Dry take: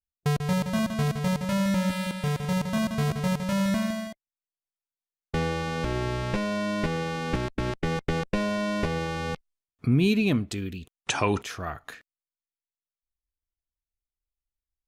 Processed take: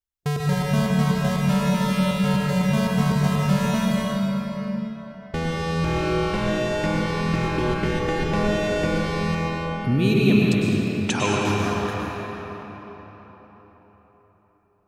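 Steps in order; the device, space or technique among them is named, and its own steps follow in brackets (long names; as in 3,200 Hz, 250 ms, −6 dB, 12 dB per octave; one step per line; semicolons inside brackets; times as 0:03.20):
cathedral (convolution reverb RT60 4.5 s, pre-delay 96 ms, DRR −4.5 dB)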